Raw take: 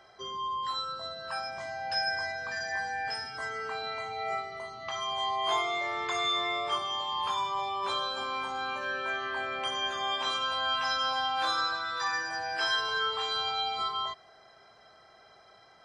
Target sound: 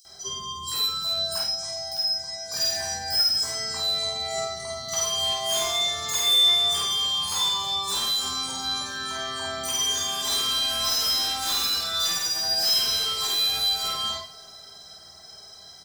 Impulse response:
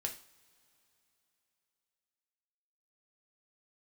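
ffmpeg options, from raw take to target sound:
-filter_complex "[0:a]bass=f=250:g=10,treble=f=4k:g=10,asettb=1/sr,asplit=3[a][b][c];[a]atrim=end=1.384[d];[b]atrim=start=1.38:end=2.49,asetpts=PTS-STARTPTS,afade=t=in:d=0.004:c=qsin,afade=t=out:st=1.106:d=0.004:c=qsin,acrossover=split=500|6100[e][f][g];[e]acompressor=threshold=-54dB:ratio=4[h];[f]acompressor=threshold=-42dB:ratio=4[i];[g]acompressor=threshold=-53dB:ratio=4[j];[h][i][j]amix=inputs=3:normalize=0[k];[c]atrim=start=2.486[l];[d][k]acrossfade=d=0.004:c1=hsin:c2=qsin[m];[m][l]acrossfade=d=0.004:c1=qsin:c2=hsin,aexciter=amount=5.7:drive=3.9:freq=3.7k,asoftclip=type=hard:threshold=-23.5dB,asplit=2[n][o];[o]adelay=50,volume=-3dB[p];[n][p]amix=inputs=2:normalize=0,acrossover=split=4800[q][r];[q]adelay=50[s];[s][r]amix=inputs=2:normalize=0[t];[1:a]atrim=start_sample=2205[u];[t][u]afir=irnorm=-1:irlink=0"

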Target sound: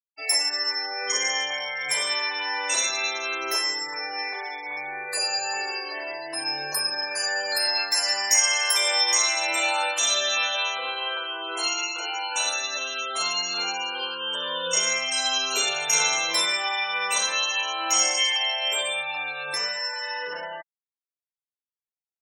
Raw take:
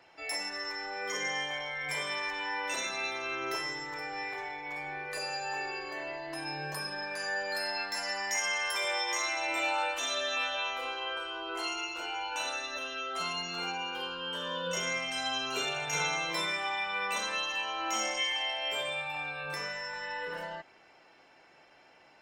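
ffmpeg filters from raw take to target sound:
-af "afftfilt=real='re*gte(hypot(re,im),0.00794)':imag='im*gte(hypot(re,im),0.00794)':win_size=1024:overlap=0.75,bass=f=250:g=-14,treble=f=4k:g=12,volume=5.5dB"

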